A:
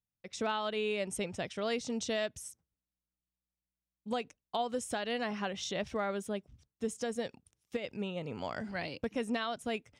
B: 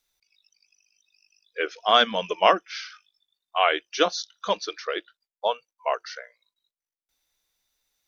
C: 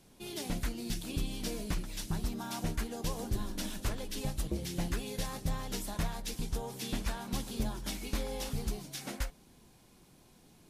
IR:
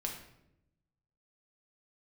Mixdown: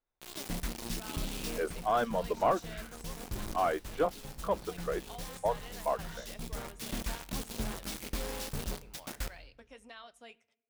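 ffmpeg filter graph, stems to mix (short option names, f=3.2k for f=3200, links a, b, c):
-filter_complex "[0:a]highpass=f=810:p=1,flanger=delay=1.2:depth=7.2:regen=-55:speed=1.7:shape=sinusoidal,adelay=550,volume=-9dB,asplit=2[a][b];[b]volume=-17.5dB[c];[1:a]asoftclip=type=tanh:threshold=-16dB,lowpass=1.1k,volume=-3dB,asplit=2[d][e];[2:a]acrusher=bits=5:mix=0:aa=0.000001,volume=-4.5dB,asplit=2[f][g];[g]volume=-11.5dB[h];[e]apad=whole_len=471745[i];[f][i]sidechaincompress=threshold=-44dB:ratio=4:attack=31:release=754[j];[3:a]atrim=start_sample=2205[k];[c][h]amix=inputs=2:normalize=0[l];[l][k]afir=irnorm=-1:irlink=0[m];[a][d][j][m]amix=inputs=4:normalize=0"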